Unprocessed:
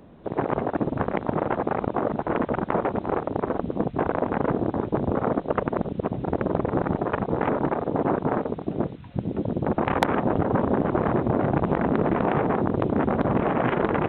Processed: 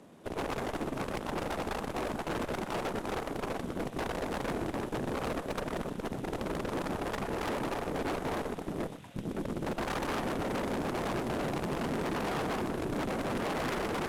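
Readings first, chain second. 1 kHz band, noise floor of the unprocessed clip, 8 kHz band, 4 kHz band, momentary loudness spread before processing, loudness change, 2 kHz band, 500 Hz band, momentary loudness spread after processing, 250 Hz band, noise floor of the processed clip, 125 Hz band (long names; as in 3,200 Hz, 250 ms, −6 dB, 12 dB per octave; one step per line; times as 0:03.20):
−9.5 dB, −40 dBFS, can't be measured, +4.0 dB, 5 LU, −9.5 dB, −4.5 dB, −10.0 dB, 4 LU, −10.5 dB, −43 dBFS, −11.5 dB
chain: variable-slope delta modulation 64 kbit/s
high-pass filter 110 Hz 12 dB per octave
low-shelf EQ 230 Hz −10 dB
on a send: feedback echo with a high-pass in the loop 125 ms, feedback 64%, high-pass 970 Hz, level −12 dB
on the sum: tube saturation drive 32 dB, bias 0.65
parametric band 730 Hz −3.5 dB 2.6 octaves
level +4 dB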